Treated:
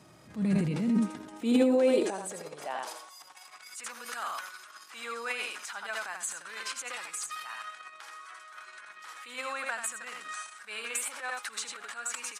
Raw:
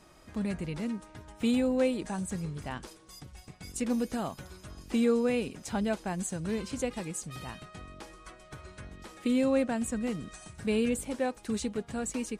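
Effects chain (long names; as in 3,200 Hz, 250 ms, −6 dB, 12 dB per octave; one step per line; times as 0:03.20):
single-tap delay 81 ms −7 dB
transient designer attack −9 dB, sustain +9 dB
high-pass filter sweep 120 Hz → 1,300 Hz, 0:00.15–0:03.73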